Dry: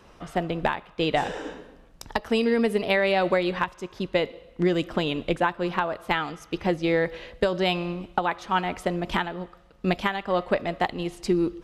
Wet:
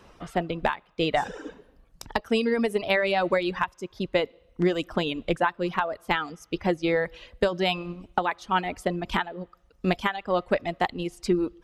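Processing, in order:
reverb reduction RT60 0.9 s

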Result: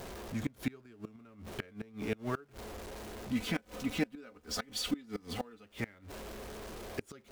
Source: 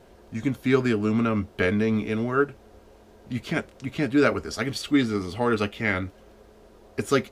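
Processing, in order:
converter with a step at zero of −33.5 dBFS
gate with flip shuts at −15 dBFS, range −27 dB
0:03.32–0:05.65: comb filter 4 ms, depth 65%
level −7 dB

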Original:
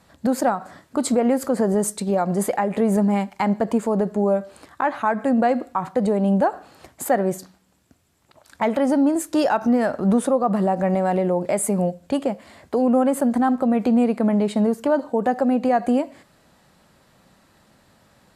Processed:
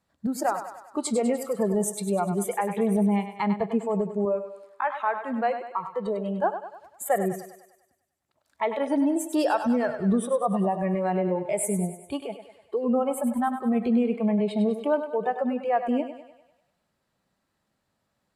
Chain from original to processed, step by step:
noise reduction from a noise print of the clip's start 16 dB
0:04.25–0:06.44: parametric band 100 Hz −13.5 dB 2.2 octaves
feedback echo with a high-pass in the loop 99 ms, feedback 56%, high-pass 330 Hz, level −9 dB
level −4 dB

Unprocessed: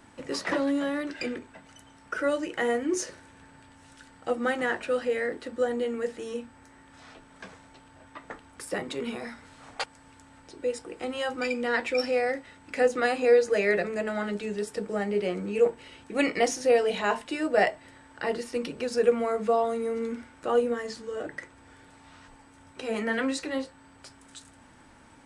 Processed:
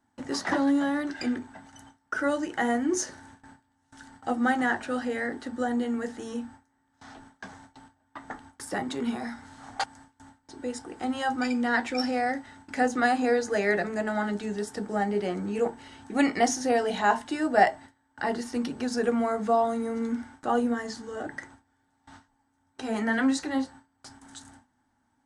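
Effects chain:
noise gate with hold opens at −41 dBFS
thirty-one-band graphic EQ 100 Hz +6 dB, 250 Hz +8 dB, 500 Hz −8 dB, 800 Hz +9 dB, 1,600 Hz +4 dB, 2,500 Hz −8 dB, 6,300 Hz +4 dB

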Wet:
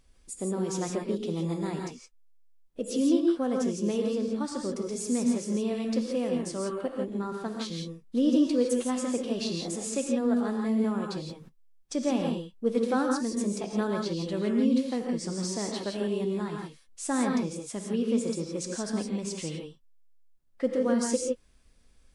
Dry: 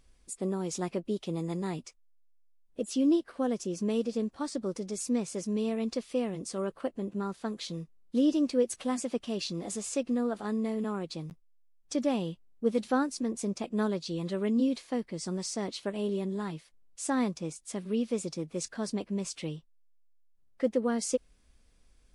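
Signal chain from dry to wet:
reverb whose tail is shaped and stops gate 190 ms rising, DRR 1 dB

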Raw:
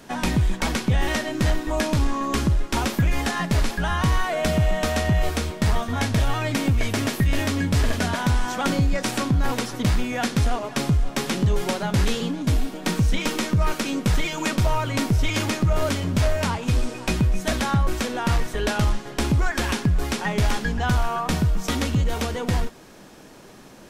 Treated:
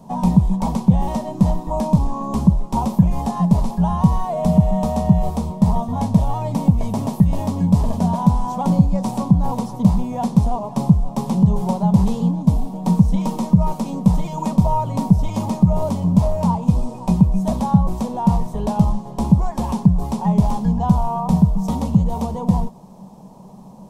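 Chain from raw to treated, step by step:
drawn EQ curve 110 Hz 0 dB, 190 Hz +13 dB, 300 Hz −8 dB, 970 Hz +6 dB, 1,500 Hz −24 dB, 3,700 Hz −14 dB, 8,600 Hz −8 dB
level +1.5 dB

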